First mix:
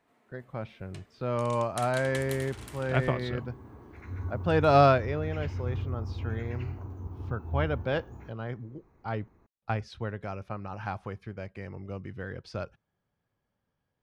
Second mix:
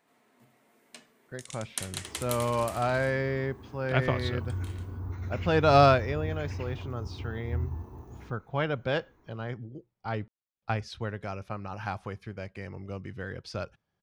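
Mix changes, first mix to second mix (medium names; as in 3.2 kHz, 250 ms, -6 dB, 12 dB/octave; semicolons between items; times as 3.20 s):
speech: entry +1.00 s; master: add treble shelf 3.2 kHz +8 dB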